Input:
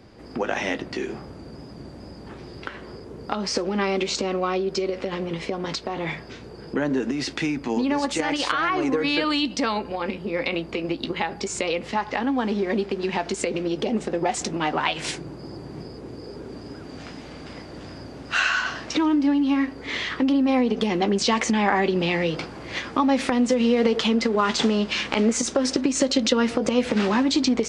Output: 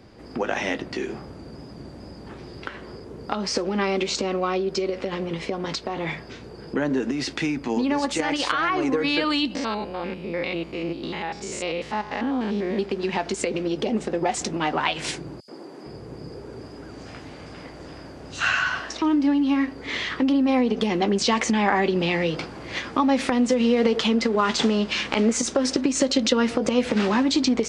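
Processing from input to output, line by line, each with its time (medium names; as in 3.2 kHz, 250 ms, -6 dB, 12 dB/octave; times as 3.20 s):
9.55–12.79 s: spectrogram pixelated in time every 100 ms
15.40–19.02 s: three bands offset in time highs, mids, lows 80/460 ms, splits 230/4200 Hz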